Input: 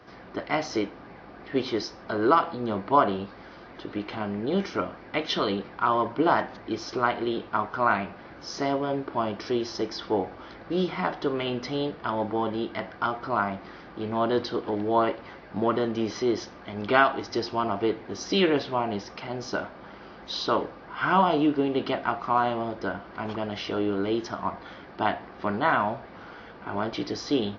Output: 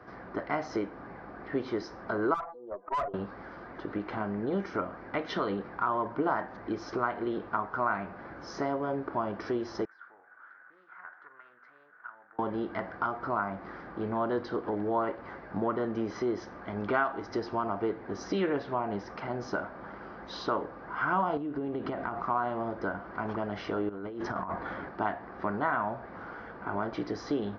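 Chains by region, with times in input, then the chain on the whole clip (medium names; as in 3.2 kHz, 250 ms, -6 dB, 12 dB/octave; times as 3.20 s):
2.34–3.14 s: spectral contrast enhancement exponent 2.3 + high-pass 500 Hz 24 dB/octave + valve stage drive 24 dB, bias 0.45
9.85–12.39 s: compression 2:1, threshold -38 dBFS + band-pass filter 1.5 kHz, Q 8.3 + loudspeaker Doppler distortion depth 0.21 ms
21.37–22.23 s: bass shelf 430 Hz +5.5 dB + compression 10:1, threshold -28 dBFS
23.89–24.89 s: compressor with a negative ratio -35 dBFS + distance through air 75 m
whole clip: resonant high shelf 2.2 kHz -9 dB, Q 1.5; compression 2:1, threshold -31 dBFS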